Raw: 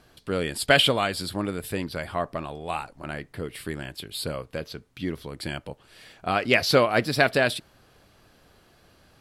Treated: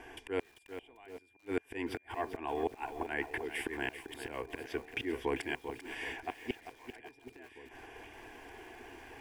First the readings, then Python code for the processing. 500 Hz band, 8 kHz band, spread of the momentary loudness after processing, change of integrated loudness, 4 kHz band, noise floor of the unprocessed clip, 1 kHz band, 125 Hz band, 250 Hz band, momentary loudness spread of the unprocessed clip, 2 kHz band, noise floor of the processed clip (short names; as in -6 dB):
-13.0 dB, -18.0 dB, 15 LU, -13.5 dB, -21.0 dB, -59 dBFS, -12.5 dB, -19.5 dB, -10.5 dB, 16 LU, -13.5 dB, -65 dBFS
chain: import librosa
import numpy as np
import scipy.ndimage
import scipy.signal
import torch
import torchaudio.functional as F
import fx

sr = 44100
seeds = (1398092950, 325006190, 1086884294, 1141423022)

y = fx.bass_treble(x, sr, bass_db=-10, treble_db=-4)
y = fx.auto_swell(y, sr, attack_ms=361.0)
y = fx.gate_flip(y, sr, shuts_db=-28.0, range_db=-39)
y = y + 10.0 ** (-78.0 / 20.0) * np.sin(2.0 * np.pi * 2400.0 * np.arange(len(y)) / sr)
y = fx.air_absorb(y, sr, metres=55.0)
y = fx.fixed_phaser(y, sr, hz=850.0, stages=8)
y = fx.echo_alternate(y, sr, ms=770, hz=940.0, feedback_pct=68, wet_db=-14.0)
y = fx.echo_crushed(y, sr, ms=393, feedback_pct=35, bits=11, wet_db=-9.5)
y = y * librosa.db_to_amplitude(12.5)